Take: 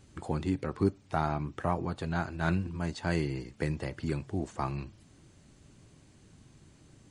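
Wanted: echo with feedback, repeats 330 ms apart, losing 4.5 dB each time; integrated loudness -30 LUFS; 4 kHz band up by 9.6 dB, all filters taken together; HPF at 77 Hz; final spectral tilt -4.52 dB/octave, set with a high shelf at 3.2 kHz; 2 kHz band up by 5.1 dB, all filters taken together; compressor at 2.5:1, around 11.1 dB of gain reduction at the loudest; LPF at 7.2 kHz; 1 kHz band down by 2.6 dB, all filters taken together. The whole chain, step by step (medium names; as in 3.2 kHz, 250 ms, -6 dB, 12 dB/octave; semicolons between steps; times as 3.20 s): high-pass 77 Hz; low-pass 7.2 kHz; peaking EQ 1 kHz -6.5 dB; peaking EQ 2 kHz +6.5 dB; treble shelf 3.2 kHz +6 dB; peaking EQ 4 kHz +6 dB; compression 2.5:1, threshold -38 dBFS; feedback delay 330 ms, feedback 60%, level -4.5 dB; trim +9 dB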